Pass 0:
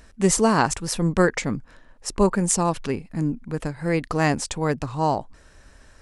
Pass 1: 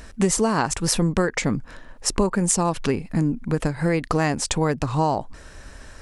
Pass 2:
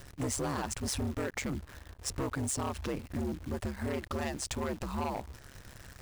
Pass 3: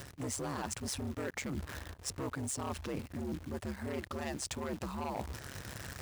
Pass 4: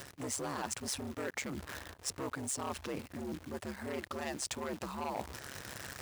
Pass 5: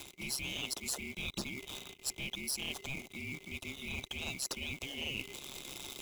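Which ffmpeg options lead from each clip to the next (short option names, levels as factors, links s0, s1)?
-af "acompressor=threshold=0.0501:ratio=6,volume=2.66"
-af "aeval=exprs='val(0)*sin(2*PI*68*n/s)':c=same,acrusher=bits=8:dc=4:mix=0:aa=0.000001,volume=12.6,asoftclip=hard,volume=0.0794,volume=0.447"
-af "highpass=69,areverse,acompressor=threshold=0.00708:ratio=6,areverse,volume=2.24"
-af "lowshelf=f=170:g=-11,volume=1.19"
-filter_complex "[0:a]afftfilt=real='real(if(lt(b,920),b+92*(1-2*mod(floor(b/92),2)),b),0)':imag='imag(if(lt(b,920),b+92*(1-2*mod(floor(b/92),2)),b),0)':win_size=2048:overlap=0.75,acrossover=split=220|1200|2300[s0][s1][s2][s3];[s2]acrusher=samples=18:mix=1:aa=0.000001[s4];[s0][s1][s4][s3]amix=inputs=4:normalize=0,volume=1.12"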